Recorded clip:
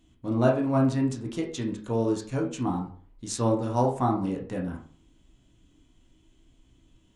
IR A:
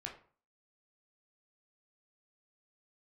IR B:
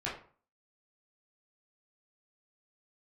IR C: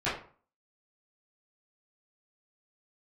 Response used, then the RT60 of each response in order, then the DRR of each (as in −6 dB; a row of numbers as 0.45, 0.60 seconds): A; 0.45, 0.45, 0.45 seconds; −0.5, −8.0, −13.5 decibels